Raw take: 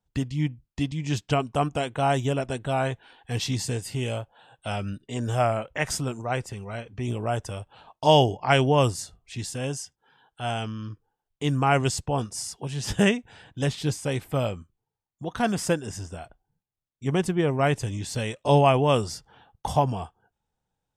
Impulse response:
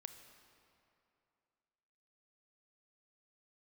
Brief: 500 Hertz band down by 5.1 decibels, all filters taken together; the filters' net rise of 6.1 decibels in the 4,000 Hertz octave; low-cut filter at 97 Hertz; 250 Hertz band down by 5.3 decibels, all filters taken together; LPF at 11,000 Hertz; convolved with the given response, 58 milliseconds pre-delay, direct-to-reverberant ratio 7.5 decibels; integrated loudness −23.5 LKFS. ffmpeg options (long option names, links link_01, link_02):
-filter_complex "[0:a]highpass=97,lowpass=11000,equalizer=frequency=250:width_type=o:gain=-6,equalizer=frequency=500:width_type=o:gain=-5.5,equalizer=frequency=4000:width_type=o:gain=9,asplit=2[link_01][link_02];[1:a]atrim=start_sample=2205,adelay=58[link_03];[link_02][link_03]afir=irnorm=-1:irlink=0,volume=-2.5dB[link_04];[link_01][link_04]amix=inputs=2:normalize=0,volume=3.5dB"